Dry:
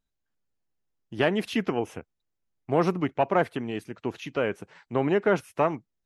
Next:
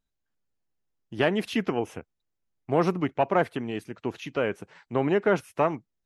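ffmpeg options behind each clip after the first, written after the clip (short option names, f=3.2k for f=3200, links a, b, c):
-af anull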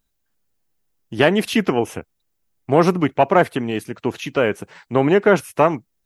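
-af "highshelf=f=8.6k:g=10,volume=8.5dB"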